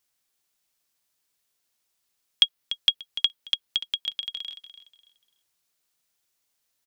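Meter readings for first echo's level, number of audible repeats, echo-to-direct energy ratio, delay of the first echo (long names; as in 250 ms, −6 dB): −12.5 dB, 2, −12.0 dB, 293 ms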